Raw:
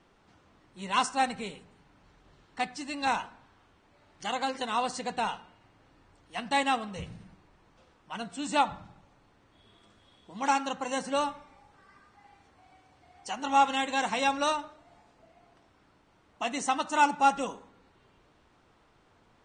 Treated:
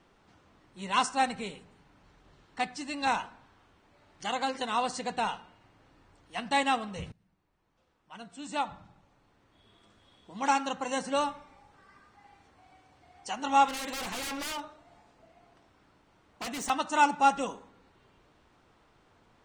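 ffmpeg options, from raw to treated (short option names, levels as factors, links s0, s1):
-filter_complex "[0:a]asettb=1/sr,asplit=3[s0][s1][s2];[s0]atrim=end=13.684[s3];[s1]atrim=start=13.68:end=16.7,asetpts=PTS-STARTPTS,afade=t=in:d=0.004:c=qsin,afade=t=out:st=3.016:d=0.004:c=qsin,aeval=exprs='0.0282*(abs(mod(val(0)/0.0282+3,4)-2)-1)':c=same[s4];[s2]atrim=start=16.696[s5];[s3][s4]acrossfade=d=0.004:c1=hsin:c2=qsin[s6];[s6][s5]acrossfade=d=0.004:c1=qsin:c2=hsin,asplit=2[s7][s8];[s7]atrim=end=7.12,asetpts=PTS-STARTPTS,afade=t=out:st=7.116:d=0.004:c=hsin:silence=0.0707946[s9];[s8]atrim=start=7.12,asetpts=PTS-STARTPTS,afade=t=in:d=3.28:silence=0.0707946[s10];[s9][s10]concat=n=2:v=0:a=1"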